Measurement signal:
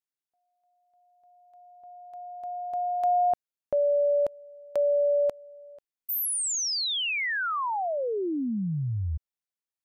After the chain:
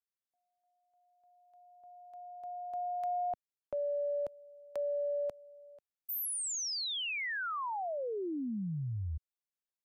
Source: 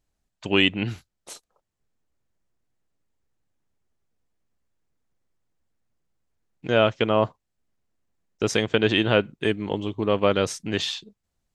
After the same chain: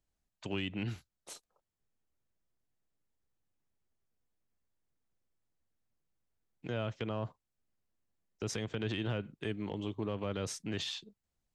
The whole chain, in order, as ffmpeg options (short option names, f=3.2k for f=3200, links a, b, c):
-filter_complex "[0:a]acrossover=split=170[a][b];[b]acompressor=threshold=-24dB:ratio=6:attack=0.42:release=123:knee=2.83:detection=peak[c];[a][c]amix=inputs=2:normalize=0,volume=-7.5dB"